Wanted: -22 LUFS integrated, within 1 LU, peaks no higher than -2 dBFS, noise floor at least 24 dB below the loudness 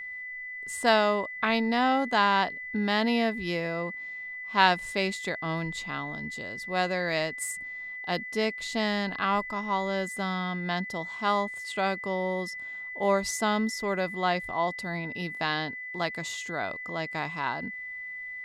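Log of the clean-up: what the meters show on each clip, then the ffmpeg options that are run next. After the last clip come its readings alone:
steady tone 2 kHz; tone level -36 dBFS; loudness -29.0 LUFS; peak level -6.0 dBFS; loudness target -22.0 LUFS
-> -af "bandreject=f=2000:w=30"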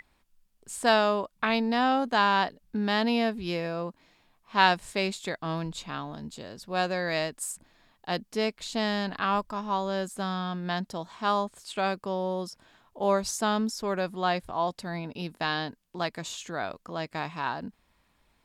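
steady tone not found; loudness -29.0 LUFS; peak level -6.5 dBFS; loudness target -22.0 LUFS
-> -af "volume=2.24,alimiter=limit=0.794:level=0:latency=1"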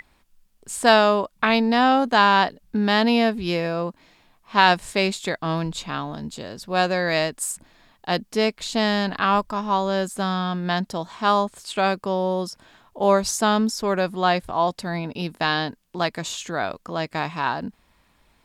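loudness -22.5 LUFS; peak level -2.0 dBFS; noise floor -62 dBFS

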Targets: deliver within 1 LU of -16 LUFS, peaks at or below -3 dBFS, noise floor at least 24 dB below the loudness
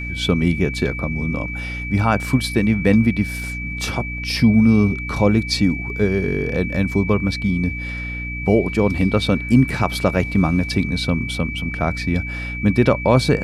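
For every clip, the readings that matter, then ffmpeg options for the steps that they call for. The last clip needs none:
hum 60 Hz; highest harmonic 300 Hz; hum level -27 dBFS; steady tone 2.3 kHz; tone level -28 dBFS; loudness -19.5 LUFS; peak level -2.5 dBFS; loudness target -16.0 LUFS
-> -af "bandreject=f=60:t=h:w=4,bandreject=f=120:t=h:w=4,bandreject=f=180:t=h:w=4,bandreject=f=240:t=h:w=4,bandreject=f=300:t=h:w=4"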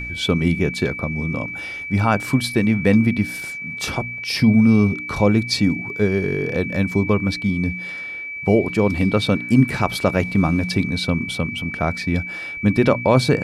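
hum not found; steady tone 2.3 kHz; tone level -28 dBFS
-> -af "bandreject=f=2300:w=30"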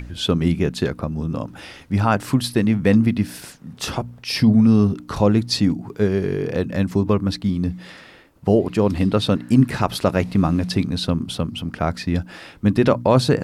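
steady tone not found; loudness -20.0 LUFS; peak level -2.5 dBFS; loudness target -16.0 LUFS
-> -af "volume=1.58,alimiter=limit=0.708:level=0:latency=1"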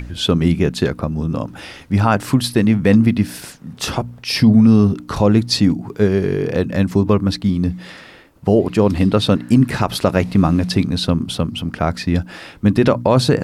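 loudness -16.5 LUFS; peak level -3.0 dBFS; noise floor -41 dBFS

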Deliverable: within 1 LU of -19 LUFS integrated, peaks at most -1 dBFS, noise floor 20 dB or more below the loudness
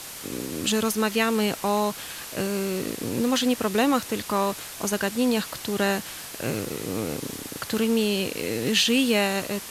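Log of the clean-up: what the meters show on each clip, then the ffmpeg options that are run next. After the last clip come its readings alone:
noise floor -39 dBFS; noise floor target -46 dBFS; loudness -25.5 LUFS; peak level -8.0 dBFS; loudness target -19.0 LUFS
-> -af "afftdn=nr=7:nf=-39"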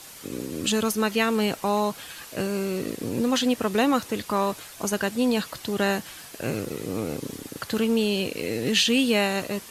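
noise floor -44 dBFS; noise floor target -46 dBFS
-> -af "afftdn=nr=6:nf=-44"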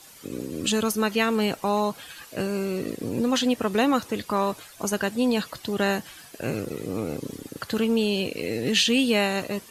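noise floor -48 dBFS; loudness -25.5 LUFS; peak level -8.0 dBFS; loudness target -19.0 LUFS
-> -af "volume=2.11"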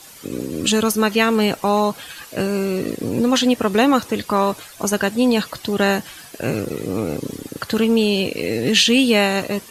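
loudness -19.0 LUFS; peak level -1.5 dBFS; noise floor -42 dBFS

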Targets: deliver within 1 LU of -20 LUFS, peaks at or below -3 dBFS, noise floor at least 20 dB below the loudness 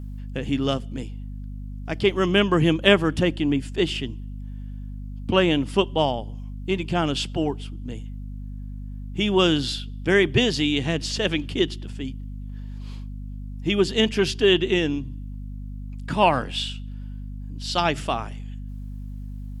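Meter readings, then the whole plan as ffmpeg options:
hum 50 Hz; highest harmonic 250 Hz; hum level -31 dBFS; loudness -23.0 LUFS; peak level -1.5 dBFS; loudness target -20.0 LUFS
-> -af "bandreject=f=50:t=h:w=4,bandreject=f=100:t=h:w=4,bandreject=f=150:t=h:w=4,bandreject=f=200:t=h:w=4,bandreject=f=250:t=h:w=4"
-af "volume=1.41,alimiter=limit=0.708:level=0:latency=1"

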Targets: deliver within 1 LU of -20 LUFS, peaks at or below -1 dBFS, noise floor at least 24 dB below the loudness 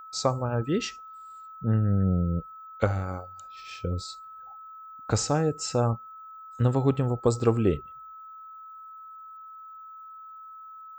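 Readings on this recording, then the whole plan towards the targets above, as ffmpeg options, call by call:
steady tone 1.3 kHz; tone level -42 dBFS; loudness -27.5 LUFS; peak level -9.0 dBFS; loudness target -20.0 LUFS
-> -af "bandreject=f=1300:w=30"
-af "volume=2.37"

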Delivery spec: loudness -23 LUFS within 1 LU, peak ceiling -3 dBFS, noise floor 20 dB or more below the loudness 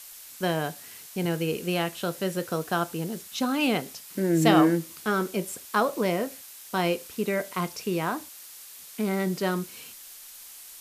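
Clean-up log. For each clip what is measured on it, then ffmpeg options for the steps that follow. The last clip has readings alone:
noise floor -46 dBFS; noise floor target -48 dBFS; loudness -27.5 LUFS; peak level -5.0 dBFS; loudness target -23.0 LUFS
-> -af "afftdn=nr=6:nf=-46"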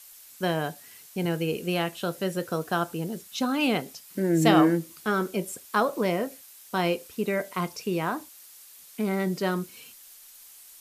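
noise floor -50 dBFS; loudness -27.5 LUFS; peak level -5.5 dBFS; loudness target -23.0 LUFS
-> -af "volume=1.68,alimiter=limit=0.708:level=0:latency=1"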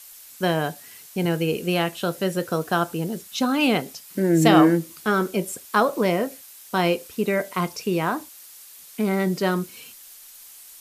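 loudness -23.0 LUFS; peak level -3.0 dBFS; noise floor -46 dBFS

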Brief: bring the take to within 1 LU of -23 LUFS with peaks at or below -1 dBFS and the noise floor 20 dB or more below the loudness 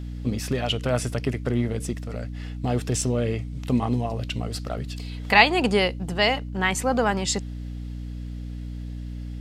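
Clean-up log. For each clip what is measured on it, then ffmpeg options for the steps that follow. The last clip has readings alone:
hum 60 Hz; highest harmonic 300 Hz; hum level -31 dBFS; loudness -24.5 LUFS; peak level -1.5 dBFS; loudness target -23.0 LUFS
-> -af "bandreject=f=60:t=h:w=6,bandreject=f=120:t=h:w=6,bandreject=f=180:t=h:w=6,bandreject=f=240:t=h:w=6,bandreject=f=300:t=h:w=6"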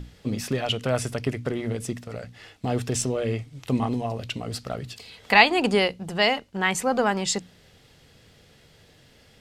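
hum not found; loudness -25.0 LUFS; peak level -1.0 dBFS; loudness target -23.0 LUFS
-> -af "volume=1.26,alimiter=limit=0.891:level=0:latency=1"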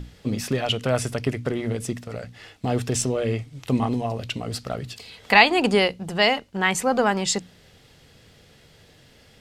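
loudness -23.0 LUFS; peak level -1.0 dBFS; noise floor -54 dBFS

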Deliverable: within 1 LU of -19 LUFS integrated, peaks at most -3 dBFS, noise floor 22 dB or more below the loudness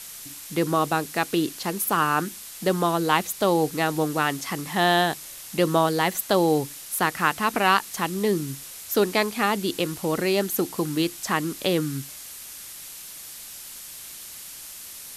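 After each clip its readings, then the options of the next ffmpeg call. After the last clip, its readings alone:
noise floor -41 dBFS; noise floor target -46 dBFS; loudness -24.0 LUFS; peak level -5.5 dBFS; loudness target -19.0 LUFS
-> -af "afftdn=nr=6:nf=-41"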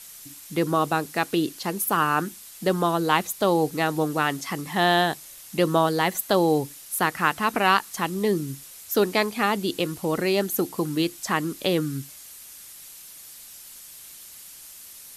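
noise floor -45 dBFS; noise floor target -46 dBFS
-> -af "afftdn=nr=6:nf=-45"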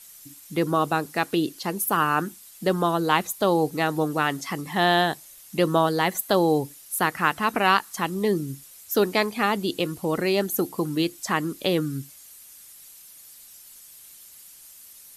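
noise floor -48 dBFS; loudness -24.0 LUFS; peak level -6.0 dBFS; loudness target -19.0 LUFS
-> -af "volume=1.78,alimiter=limit=0.708:level=0:latency=1"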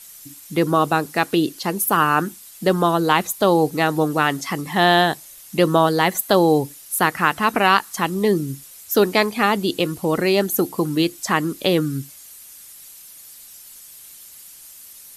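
loudness -19.5 LUFS; peak level -3.0 dBFS; noise floor -43 dBFS

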